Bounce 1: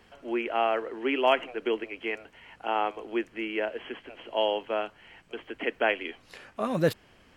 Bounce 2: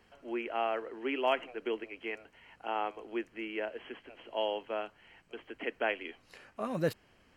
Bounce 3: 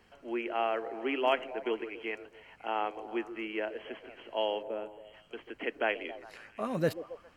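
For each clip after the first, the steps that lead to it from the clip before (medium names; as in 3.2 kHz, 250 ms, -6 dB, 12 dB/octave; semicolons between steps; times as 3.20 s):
band-stop 3.5 kHz, Q 9.2; trim -6.5 dB
time-frequency box 4.63–5.14 s, 640–6700 Hz -11 dB; repeats whose band climbs or falls 136 ms, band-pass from 380 Hz, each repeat 0.7 oct, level -10.5 dB; trim +1.5 dB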